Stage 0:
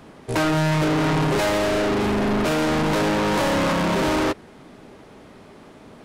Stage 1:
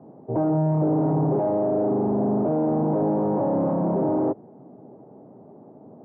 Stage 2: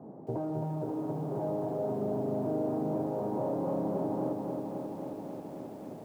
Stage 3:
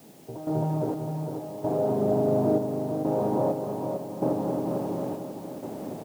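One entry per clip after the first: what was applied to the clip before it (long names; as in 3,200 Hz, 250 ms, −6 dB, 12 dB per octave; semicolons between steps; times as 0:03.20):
Chebyshev band-pass filter 120–790 Hz, order 3
downward compressor 20 to 1, threshold −30 dBFS, peak gain reduction 12.5 dB; flanger 0.52 Hz, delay 4 ms, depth 8.9 ms, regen +88%; feedback echo at a low word length 268 ms, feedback 80%, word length 11 bits, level −5 dB; level +3.5 dB
gate pattern "..xx...xxxx" 64 BPM −12 dB; background noise white −65 dBFS; single-tap delay 451 ms −6.5 dB; level +7.5 dB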